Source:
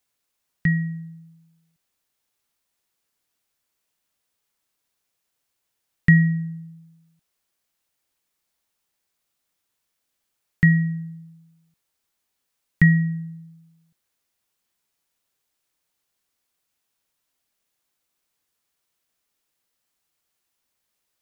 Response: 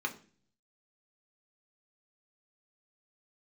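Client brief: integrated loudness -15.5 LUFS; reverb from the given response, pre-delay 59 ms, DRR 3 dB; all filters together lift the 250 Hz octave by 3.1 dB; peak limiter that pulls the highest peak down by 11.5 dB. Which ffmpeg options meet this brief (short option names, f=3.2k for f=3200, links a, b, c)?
-filter_complex "[0:a]equalizer=f=250:t=o:g=7.5,alimiter=limit=-13dB:level=0:latency=1,asplit=2[a][b];[1:a]atrim=start_sample=2205,adelay=59[c];[b][c]afir=irnorm=-1:irlink=0,volume=-7.5dB[d];[a][d]amix=inputs=2:normalize=0,volume=7dB"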